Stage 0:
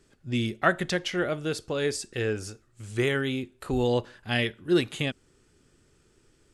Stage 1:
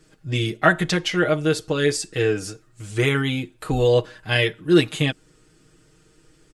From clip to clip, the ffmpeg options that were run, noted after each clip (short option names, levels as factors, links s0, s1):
-af "aecho=1:1:6.4:0.87,volume=1.68"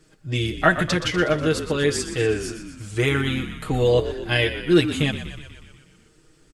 -filter_complex "[0:a]asplit=9[s0][s1][s2][s3][s4][s5][s6][s7][s8];[s1]adelay=122,afreqshift=-46,volume=0.282[s9];[s2]adelay=244,afreqshift=-92,volume=0.178[s10];[s3]adelay=366,afreqshift=-138,volume=0.112[s11];[s4]adelay=488,afreqshift=-184,volume=0.0708[s12];[s5]adelay=610,afreqshift=-230,volume=0.0442[s13];[s6]adelay=732,afreqshift=-276,volume=0.0279[s14];[s7]adelay=854,afreqshift=-322,volume=0.0176[s15];[s8]adelay=976,afreqshift=-368,volume=0.0111[s16];[s0][s9][s10][s11][s12][s13][s14][s15][s16]amix=inputs=9:normalize=0,volume=0.891"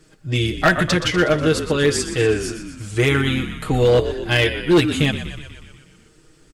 -af "volume=4.47,asoftclip=hard,volume=0.224,volume=1.58"